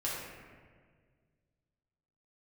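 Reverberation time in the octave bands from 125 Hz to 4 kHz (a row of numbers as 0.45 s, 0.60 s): 2.6 s, 2.2 s, 2.0 s, 1.5 s, 1.5 s, 1.0 s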